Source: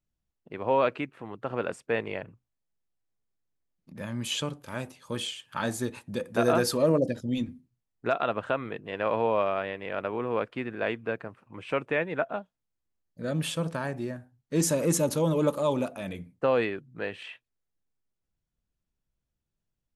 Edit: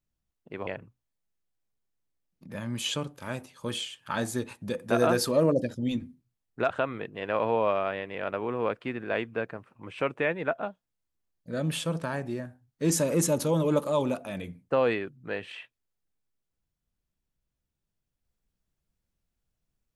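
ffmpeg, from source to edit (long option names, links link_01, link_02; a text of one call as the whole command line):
ffmpeg -i in.wav -filter_complex "[0:a]asplit=3[link_01][link_02][link_03];[link_01]atrim=end=0.672[link_04];[link_02]atrim=start=2.128:end=8.162[link_05];[link_03]atrim=start=8.408[link_06];[link_04][link_05]acrossfade=duration=0.004:curve1=hsin:curve2=hsin[link_07];[link_07][link_06]acrossfade=duration=0.004:curve1=hsin:curve2=hsin" out.wav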